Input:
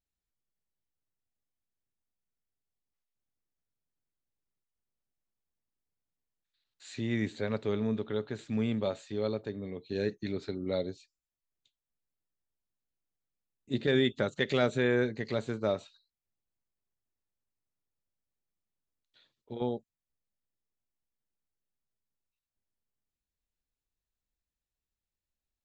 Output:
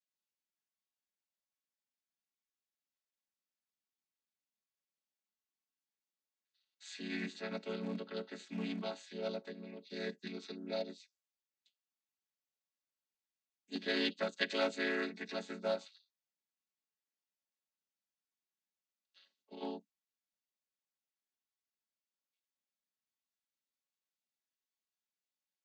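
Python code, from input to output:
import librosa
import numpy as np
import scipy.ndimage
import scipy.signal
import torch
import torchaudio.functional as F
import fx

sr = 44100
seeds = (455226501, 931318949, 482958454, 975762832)

p1 = fx.chord_vocoder(x, sr, chord='minor triad', root=54)
p2 = np.clip(p1, -10.0 ** (-25.5 / 20.0), 10.0 ** (-25.5 / 20.0))
p3 = p1 + (p2 * librosa.db_to_amplitude(-11.0))
p4 = fx.bandpass_q(p3, sr, hz=5700.0, q=0.64)
y = p4 * librosa.db_to_amplitude(11.0)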